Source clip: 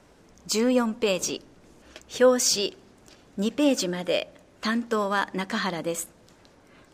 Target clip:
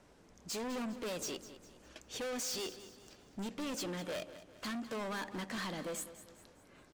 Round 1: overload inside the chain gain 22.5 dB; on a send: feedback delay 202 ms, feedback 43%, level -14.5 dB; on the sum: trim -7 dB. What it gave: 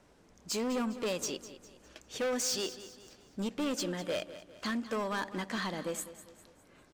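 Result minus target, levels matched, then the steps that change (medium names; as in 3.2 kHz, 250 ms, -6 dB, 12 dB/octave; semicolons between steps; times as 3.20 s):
overload inside the chain: distortion -4 dB
change: overload inside the chain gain 30.5 dB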